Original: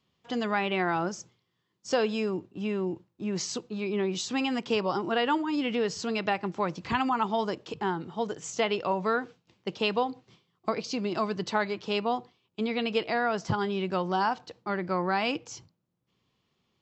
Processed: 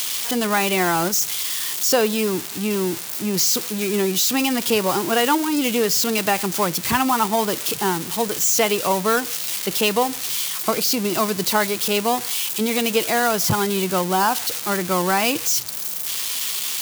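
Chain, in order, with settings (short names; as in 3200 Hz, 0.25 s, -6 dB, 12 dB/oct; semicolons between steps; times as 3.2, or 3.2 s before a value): switching spikes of -21 dBFS; gain +7.5 dB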